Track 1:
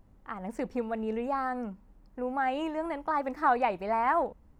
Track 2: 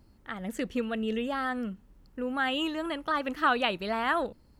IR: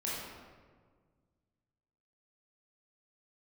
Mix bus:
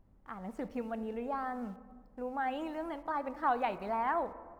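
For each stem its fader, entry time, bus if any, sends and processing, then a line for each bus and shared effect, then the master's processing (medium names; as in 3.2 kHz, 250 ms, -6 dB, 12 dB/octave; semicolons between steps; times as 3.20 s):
-6.0 dB, 0.00 s, send -16 dB, treble shelf 3.2 kHz -7.5 dB
-20.0 dB, 0.00 s, no send, bit crusher 8-bit; rotary cabinet horn 1 Hz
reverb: on, RT60 1.6 s, pre-delay 18 ms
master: none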